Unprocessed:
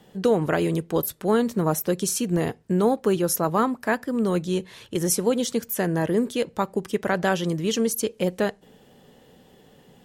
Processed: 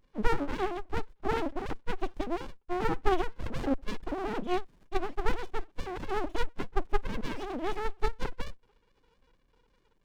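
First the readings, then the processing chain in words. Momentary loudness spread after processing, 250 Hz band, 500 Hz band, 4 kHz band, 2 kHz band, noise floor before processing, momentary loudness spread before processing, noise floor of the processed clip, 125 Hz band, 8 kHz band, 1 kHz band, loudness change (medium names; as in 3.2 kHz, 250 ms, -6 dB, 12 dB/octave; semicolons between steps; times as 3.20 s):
7 LU, -12.5 dB, -11.0 dB, -10.5 dB, -7.5 dB, -55 dBFS, 5 LU, -69 dBFS, -13.0 dB, -25.5 dB, -5.0 dB, -10.5 dB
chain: formants replaced by sine waves; sliding maximum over 65 samples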